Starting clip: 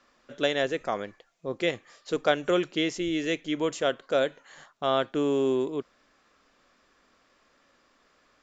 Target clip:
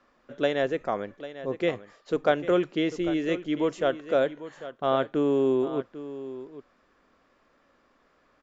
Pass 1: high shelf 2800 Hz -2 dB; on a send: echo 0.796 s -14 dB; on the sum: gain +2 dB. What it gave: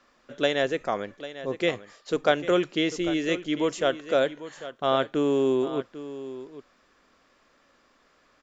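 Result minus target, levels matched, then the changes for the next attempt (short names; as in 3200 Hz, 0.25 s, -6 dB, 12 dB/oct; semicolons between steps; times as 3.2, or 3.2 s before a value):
4000 Hz band +6.0 dB
change: high shelf 2800 Hz -13.5 dB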